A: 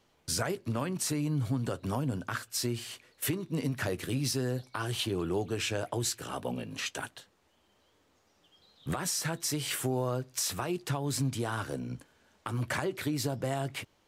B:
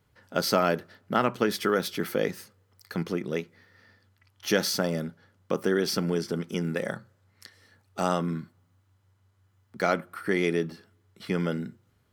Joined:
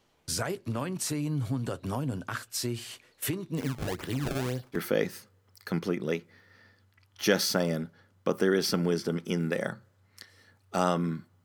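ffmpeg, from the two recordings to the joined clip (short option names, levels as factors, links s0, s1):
-filter_complex "[0:a]asplit=3[s0][s1][s2];[s0]afade=t=out:st=3.56:d=0.02[s3];[s1]acrusher=samples=26:mix=1:aa=0.000001:lfo=1:lforange=41.6:lforate=1.9,afade=t=in:st=3.56:d=0.02,afade=t=out:st=4.78:d=0.02[s4];[s2]afade=t=in:st=4.78:d=0.02[s5];[s3][s4][s5]amix=inputs=3:normalize=0,apad=whole_dur=11.44,atrim=end=11.44,atrim=end=4.78,asetpts=PTS-STARTPTS[s6];[1:a]atrim=start=1.96:end=8.68,asetpts=PTS-STARTPTS[s7];[s6][s7]acrossfade=d=0.06:c1=tri:c2=tri"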